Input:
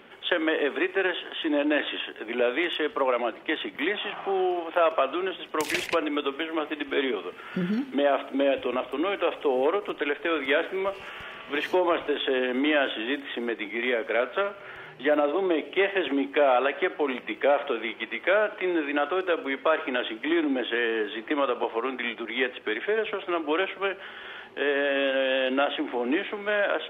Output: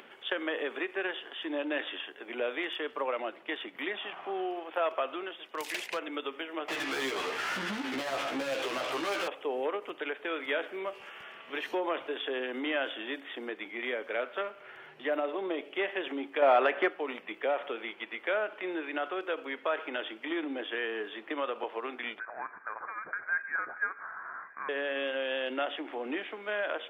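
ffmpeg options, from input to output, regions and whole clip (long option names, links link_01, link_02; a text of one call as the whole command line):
ffmpeg -i in.wav -filter_complex "[0:a]asettb=1/sr,asplit=3[link_01][link_02][link_03];[link_01]atrim=end=5.234[link_04];[link_02]atrim=start=5.23:end=6.08,asetpts=PTS-STARTPTS,afade=type=in:duration=0.004:curve=qsin,afade=type=out:start_time=0.846:duration=0.004:curve=qsin,lowshelf=frequency=270:gain=-9,aeval=exprs='0.126*(abs(mod(val(0)/0.126+3,4)-2)-1)':channel_layout=same[link_05];[link_03]atrim=start=6.076[link_06];[link_04][link_05]acrossfade=duration=0.004:curve1=hsin:curve2=qsin[link_07];[link_07][link_06]acrossfade=duration=0.004:curve1=qsin:curve2=hsin,asettb=1/sr,asplit=3[link_08][link_09][link_10];[link_08]atrim=end=6.684[link_11];[link_09]atrim=start=6.68:end=9.28,asetpts=PTS-STARTPTS,afade=type=in:duration=0.004:curve=qsin,afade=type=out:start_time=2.596:duration=0.004:curve=qsin,acompressor=threshold=-33dB:ratio=2:attack=3.2:release=140:knee=1:detection=peak,asplit=2[link_12][link_13];[link_13]highpass=frequency=720:poles=1,volume=32dB,asoftclip=type=tanh:threshold=-20.5dB[link_14];[link_12][link_14]amix=inputs=2:normalize=0,lowpass=frequency=4700:poles=1,volume=-6dB,asplit=2[link_15][link_16];[link_16]adelay=15,volume=-3dB[link_17];[link_15][link_17]amix=inputs=2:normalize=0,atrim=end_sample=114660[link_18];[link_10]atrim=start=9.276[link_19];[link_11][link_18]acrossfade=duration=0.004:curve1=hsin:curve2=qsin[link_20];[link_20][link_19]acrossfade=duration=0.004:curve1=qsin:curve2=hsin,asettb=1/sr,asplit=3[link_21][link_22][link_23];[link_21]atrim=end=16.424[link_24];[link_22]atrim=start=16.42:end=16.9,asetpts=PTS-STARTPTS,afade=type=in:duration=0.004:curve=qsin,afade=type=out:start_time=0.476:duration=0.004:curve=qsin,lowpass=2900,acontrast=83[link_25];[link_23]atrim=start=16.896[link_26];[link_24][link_25]acrossfade=duration=0.004:curve1=hsin:curve2=qsin[link_27];[link_27][link_26]acrossfade=duration=0.004:curve1=qsin:curve2=hsin,asettb=1/sr,asplit=3[link_28][link_29][link_30];[link_28]atrim=end=22.194[link_31];[link_29]atrim=start=22.19:end=24.69,asetpts=PTS-STARTPTS,afade=type=in:duration=0.004:curve=qsin,afade=type=out:start_time=2.496:duration=0.004:curve=qsin,acompressor=threshold=-39dB:ratio=1.5:attack=3.2:release=140:knee=1:detection=peak,highpass=frequency=1200:width_type=q:width=8.1,lowpass=frequency=2400:width_type=q:width=0.5098,lowpass=frequency=2400:width_type=q:width=0.6013,lowpass=frequency=2400:width_type=q:width=0.9,lowpass=frequency=2400:width_type=q:width=2.563,afreqshift=-2800[link_32];[link_30]atrim=start=24.686[link_33];[link_31][link_32]acrossfade=duration=0.004:curve1=hsin:curve2=qsin[link_34];[link_34][link_33]acrossfade=duration=0.004:curve1=qsin:curve2=hsin,highpass=frequency=310:poles=1,acompressor=mode=upward:threshold=-40dB:ratio=2.5,volume=-7dB" out.wav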